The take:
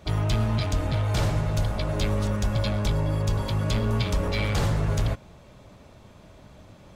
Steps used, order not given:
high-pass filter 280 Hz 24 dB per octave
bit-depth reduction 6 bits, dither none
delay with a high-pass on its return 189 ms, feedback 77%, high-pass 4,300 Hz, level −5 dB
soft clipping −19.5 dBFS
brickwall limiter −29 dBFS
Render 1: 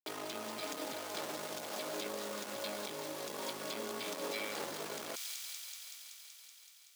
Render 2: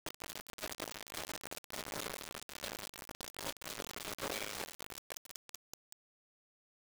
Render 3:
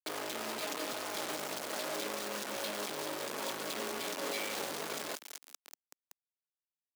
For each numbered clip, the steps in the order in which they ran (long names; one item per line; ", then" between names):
bit-depth reduction, then delay with a high-pass on its return, then soft clipping, then brickwall limiter, then high-pass filter
delay with a high-pass on its return, then brickwall limiter, then high-pass filter, then soft clipping, then bit-depth reduction
delay with a high-pass on its return, then soft clipping, then brickwall limiter, then bit-depth reduction, then high-pass filter